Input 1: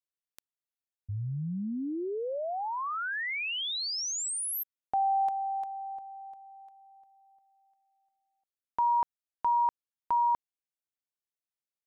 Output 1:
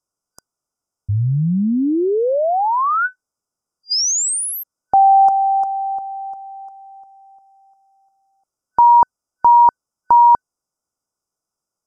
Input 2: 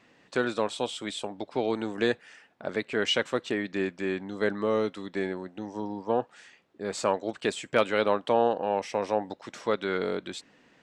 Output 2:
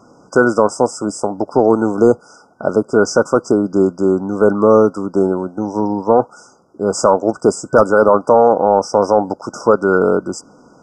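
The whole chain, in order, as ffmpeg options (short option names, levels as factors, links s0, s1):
-af "afftfilt=real='re*(1-between(b*sr/4096,1500,4800))':imag='im*(1-between(b*sr/4096,1500,4800))':win_size=4096:overlap=0.75,apsyclip=7.94,lowpass=8400,volume=0.841"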